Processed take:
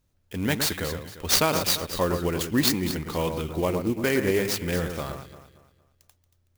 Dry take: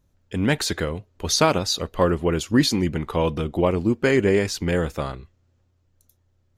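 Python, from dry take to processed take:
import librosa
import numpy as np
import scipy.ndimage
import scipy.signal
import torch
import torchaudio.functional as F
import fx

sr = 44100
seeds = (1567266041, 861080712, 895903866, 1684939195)

p1 = fx.high_shelf(x, sr, hz=3300.0, db=10.5)
p2 = p1 + fx.echo_alternate(p1, sr, ms=115, hz=2100.0, feedback_pct=58, wet_db=-6.5, dry=0)
p3 = fx.clock_jitter(p2, sr, seeds[0], jitter_ms=0.029)
y = p3 * librosa.db_to_amplitude(-6.0)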